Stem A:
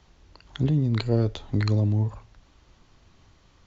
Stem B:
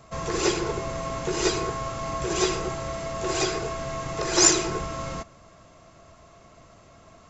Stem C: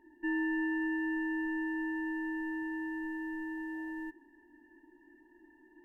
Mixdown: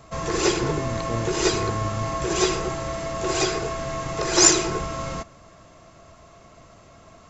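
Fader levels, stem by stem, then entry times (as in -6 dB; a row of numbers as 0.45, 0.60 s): -7.5, +2.5, -8.0 dB; 0.00, 0.00, 0.00 s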